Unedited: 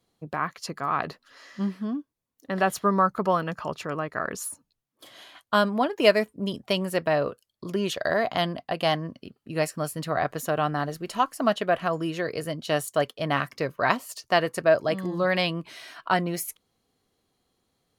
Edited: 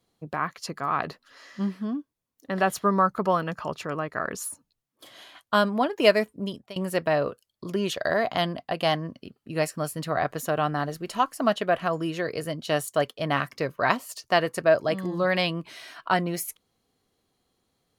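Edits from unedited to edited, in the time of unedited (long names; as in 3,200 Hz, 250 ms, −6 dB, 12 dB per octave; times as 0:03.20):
0:06.37–0:06.76: fade out linear, to −22.5 dB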